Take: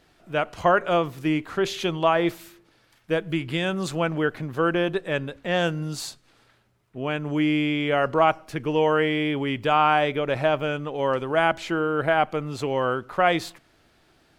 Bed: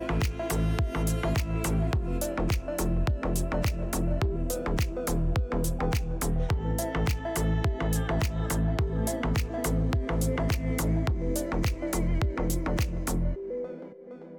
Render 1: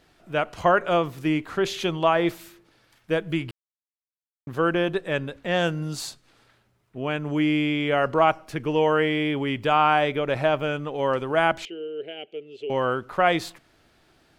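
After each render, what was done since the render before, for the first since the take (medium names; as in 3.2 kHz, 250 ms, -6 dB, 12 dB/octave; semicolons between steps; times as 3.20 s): 3.51–4.47 s: mute; 11.65–12.70 s: two resonant band-passes 1.1 kHz, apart 2.8 oct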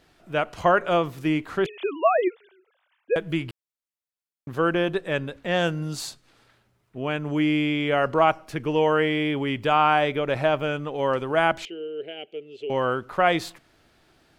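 1.66–3.16 s: formants replaced by sine waves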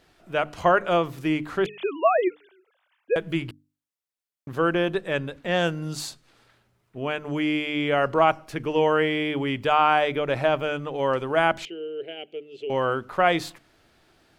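hum notches 50/100/150/200/250/300 Hz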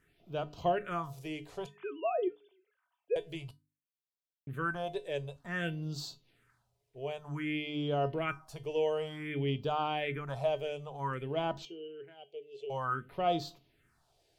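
feedback comb 140 Hz, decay 0.21 s, harmonics odd, mix 70%; phase shifter stages 4, 0.54 Hz, lowest notch 210–2000 Hz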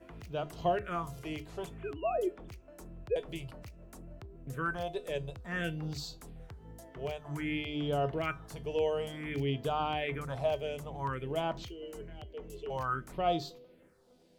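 add bed -21.5 dB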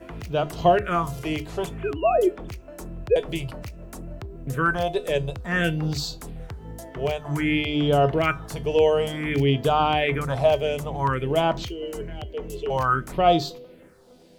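trim +12 dB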